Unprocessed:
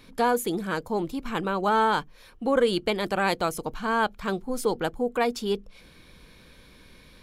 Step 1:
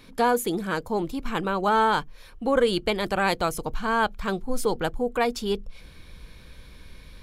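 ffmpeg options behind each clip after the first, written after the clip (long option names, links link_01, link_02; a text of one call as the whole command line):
ffmpeg -i in.wav -af "asubboost=boost=2.5:cutoff=130,volume=1.5dB" out.wav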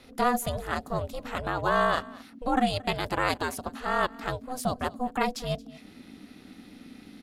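ffmpeg -i in.wav -filter_complex "[0:a]acrossover=split=250|3200[link_01][link_02][link_03];[link_01]acompressor=threshold=-40dB:ratio=6[link_04];[link_04][link_02][link_03]amix=inputs=3:normalize=0,aeval=exprs='val(0)*sin(2*PI*250*n/s)':channel_layout=same,aecho=1:1:225:0.0841" out.wav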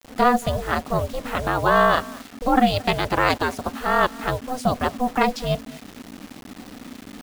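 ffmpeg -i in.wav -filter_complex "[0:a]acrossover=split=620|970[link_01][link_02][link_03];[link_03]adynamicsmooth=sensitivity=2.5:basefreq=5200[link_04];[link_01][link_02][link_04]amix=inputs=3:normalize=0,acrusher=bits=7:mix=0:aa=0.000001,volume=7.5dB" out.wav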